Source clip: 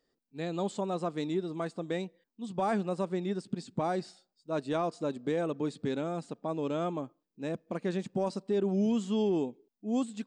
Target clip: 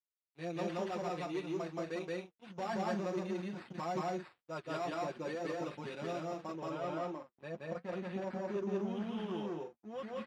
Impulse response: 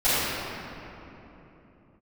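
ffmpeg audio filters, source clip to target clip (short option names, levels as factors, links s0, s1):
-af "lowshelf=f=470:g=-10,aecho=1:1:5.6:0.7,asoftclip=type=tanh:threshold=0.0282,flanger=delay=1.3:depth=4.6:regen=-47:speed=0.89:shape=sinusoidal,acrusher=samples=7:mix=1:aa=0.000001,aeval=exprs='sgn(val(0))*max(abs(val(0))-0.00112,0)':c=same,asetnsamples=n=441:p=0,asendcmd='6.54 lowpass f 2600',lowpass=4200,flanger=delay=6:depth=3.4:regen=-58:speed=2:shape=sinusoidal,highpass=68,aecho=1:1:174.9|218.7:1|0.355,volume=2"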